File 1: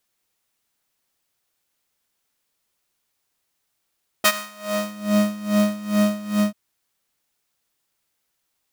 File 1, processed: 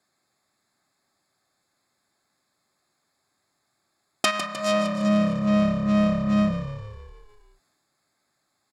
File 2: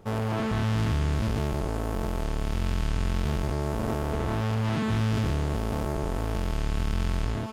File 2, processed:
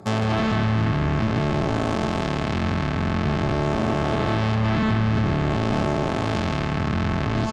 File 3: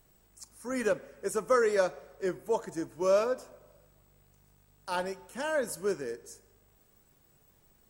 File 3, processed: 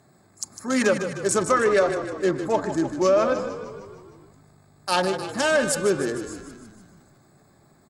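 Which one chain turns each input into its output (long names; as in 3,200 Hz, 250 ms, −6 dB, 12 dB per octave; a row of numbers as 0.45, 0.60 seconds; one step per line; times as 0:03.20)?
adaptive Wiener filter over 15 samples
treble cut that deepens with the level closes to 2,000 Hz, closed at −22 dBFS
high-pass filter 92 Hz 24 dB per octave
parametric band 7,300 Hz +13 dB 2.7 octaves
notch comb filter 480 Hz
downward compressor 6 to 1, threshold −28 dBFS
echo with shifted repeats 153 ms, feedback 61%, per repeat −34 Hz, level −11.5 dB
transient designer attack −2 dB, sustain +3 dB
loudness normalisation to −23 LKFS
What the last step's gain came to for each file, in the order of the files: +9.0, +10.5, +12.5 decibels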